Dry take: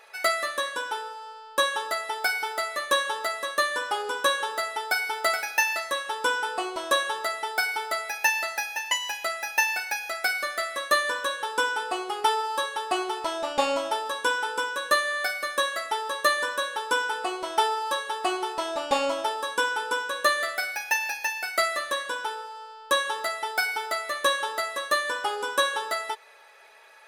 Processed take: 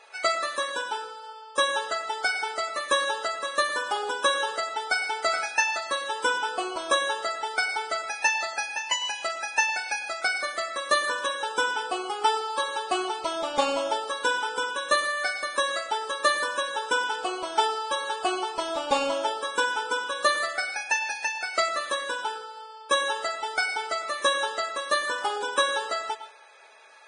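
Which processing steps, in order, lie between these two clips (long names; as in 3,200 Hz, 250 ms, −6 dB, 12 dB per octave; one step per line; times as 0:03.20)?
notch filter 1,900 Hz, Q 9.6
convolution reverb RT60 0.30 s, pre-delay 97 ms, DRR 12.5 dB
Ogg Vorbis 16 kbit/s 22,050 Hz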